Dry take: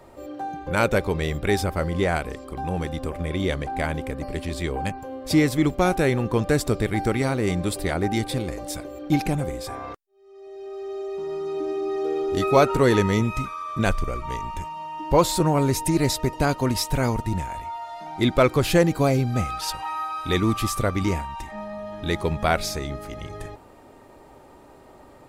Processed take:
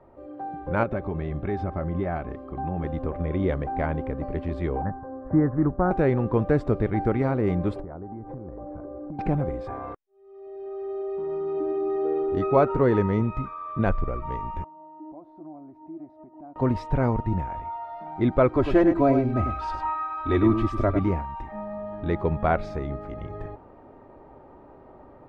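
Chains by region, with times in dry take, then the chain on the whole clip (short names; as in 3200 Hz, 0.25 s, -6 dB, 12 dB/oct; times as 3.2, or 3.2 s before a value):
0.83–2.84 compressor 2.5:1, threshold -23 dBFS + air absorption 63 m + notch comb 480 Hz
4.82–5.91 steep low-pass 1800 Hz 72 dB/oct + bell 450 Hz -4 dB 1.4 oct
7.8–9.19 LPF 1300 Hz 24 dB/oct + compressor 16:1, threshold -33 dBFS
14.64–16.56 compressor 8:1, threshold -31 dBFS + double band-pass 460 Hz, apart 1.1 oct
18.53–20.99 comb 3.1 ms, depth 79% + echo 0.101 s -8 dB
whole clip: LPF 1300 Hz 12 dB/oct; AGC gain up to 5.5 dB; gain -5 dB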